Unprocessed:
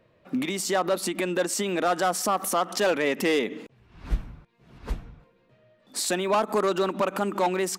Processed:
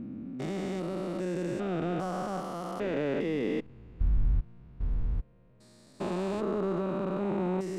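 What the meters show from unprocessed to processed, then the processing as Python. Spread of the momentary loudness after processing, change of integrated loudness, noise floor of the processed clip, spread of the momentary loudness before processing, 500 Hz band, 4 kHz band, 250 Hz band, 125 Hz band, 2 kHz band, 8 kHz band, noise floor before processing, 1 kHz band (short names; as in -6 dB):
7 LU, -7.0 dB, -58 dBFS, 12 LU, -6.5 dB, -16.0 dB, -2.0 dB, +3.5 dB, -13.0 dB, -23.0 dB, -63 dBFS, -11.5 dB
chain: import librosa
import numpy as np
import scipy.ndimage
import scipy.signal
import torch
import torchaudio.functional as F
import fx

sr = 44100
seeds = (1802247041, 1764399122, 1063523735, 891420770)

y = fx.spec_steps(x, sr, hold_ms=400)
y = fx.riaa(y, sr, side='playback')
y = F.gain(torch.from_numpy(y), -5.5).numpy()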